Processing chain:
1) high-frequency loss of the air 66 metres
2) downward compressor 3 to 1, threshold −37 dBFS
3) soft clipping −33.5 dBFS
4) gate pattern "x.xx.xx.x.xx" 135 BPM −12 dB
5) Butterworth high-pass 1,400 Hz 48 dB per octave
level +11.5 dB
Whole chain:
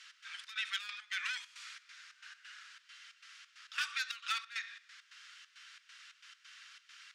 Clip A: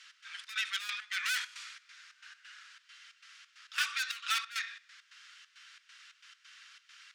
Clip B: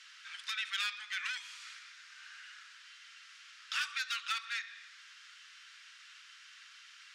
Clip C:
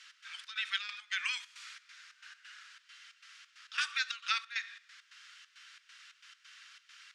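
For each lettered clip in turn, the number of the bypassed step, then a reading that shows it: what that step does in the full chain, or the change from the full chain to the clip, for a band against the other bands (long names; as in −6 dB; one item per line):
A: 2, average gain reduction 6.0 dB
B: 4, change in crest factor −2.0 dB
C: 3, distortion level −12 dB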